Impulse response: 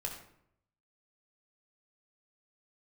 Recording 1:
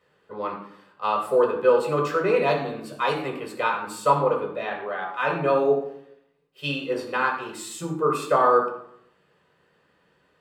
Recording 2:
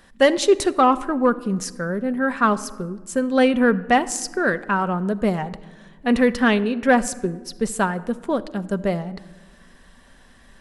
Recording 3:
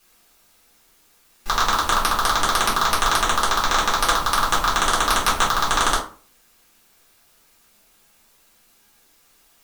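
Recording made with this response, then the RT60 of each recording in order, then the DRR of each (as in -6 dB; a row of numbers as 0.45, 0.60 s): 1; 0.70, 1.5, 0.40 s; -0.5, 10.5, -6.0 dB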